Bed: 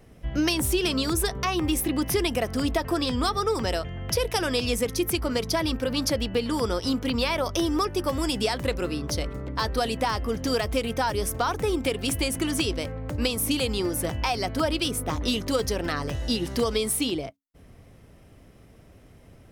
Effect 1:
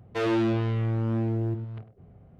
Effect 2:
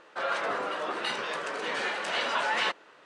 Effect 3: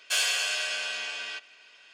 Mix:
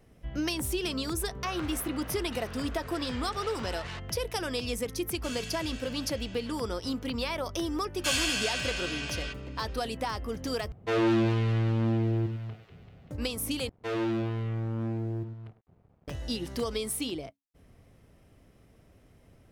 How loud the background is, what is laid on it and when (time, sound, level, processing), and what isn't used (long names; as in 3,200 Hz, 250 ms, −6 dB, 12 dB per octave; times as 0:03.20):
bed −7 dB
0:01.28: mix in 2 −12 dB + saturating transformer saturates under 3,100 Hz
0:05.13: mix in 3 −17 dB + comb filter 3 ms, depth 50%
0:07.94: mix in 3 −2.5 dB
0:10.72: overwrite with 1 + delay with a high-pass on its return 193 ms, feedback 67%, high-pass 1,800 Hz, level −5 dB
0:13.69: overwrite with 1 −5 dB + dead-zone distortion −54 dBFS